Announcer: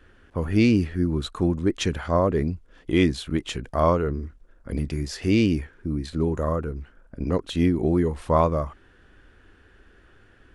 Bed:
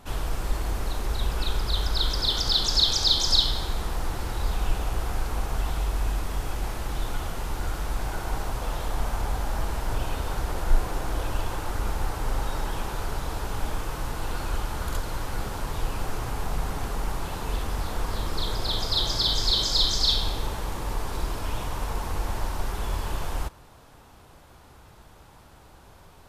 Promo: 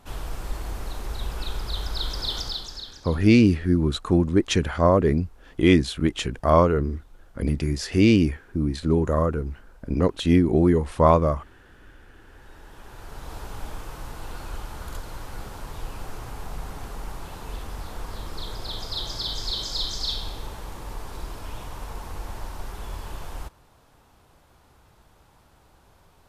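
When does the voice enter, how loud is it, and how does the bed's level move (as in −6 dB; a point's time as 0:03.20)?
2.70 s, +3.0 dB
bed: 0:02.39 −4 dB
0:03.16 −28 dB
0:12.11 −28 dB
0:13.34 −6 dB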